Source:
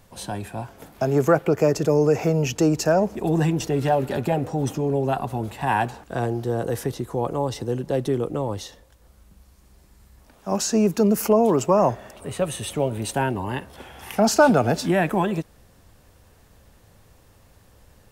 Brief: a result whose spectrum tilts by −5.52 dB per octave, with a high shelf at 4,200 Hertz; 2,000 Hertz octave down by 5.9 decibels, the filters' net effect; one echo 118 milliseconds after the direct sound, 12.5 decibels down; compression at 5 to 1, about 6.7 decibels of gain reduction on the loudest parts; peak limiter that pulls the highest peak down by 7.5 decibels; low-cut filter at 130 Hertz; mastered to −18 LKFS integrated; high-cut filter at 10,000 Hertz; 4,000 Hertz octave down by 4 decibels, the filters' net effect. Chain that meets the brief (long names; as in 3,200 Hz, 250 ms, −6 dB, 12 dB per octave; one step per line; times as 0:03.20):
high-pass filter 130 Hz
low-pass filter 10,000 Hz
parametric band 2,000 Hz −8.5 dB
parametric band 4,000 Hz −9 dB
high-shelf EQ 4,200 Hz +7.5 dB
downward compressor 5 to 1, threshold −20 dBFS
brickwall limiter −17.5 dBFS
single-tap delay 118 ms −12.5 dB
level +10 dB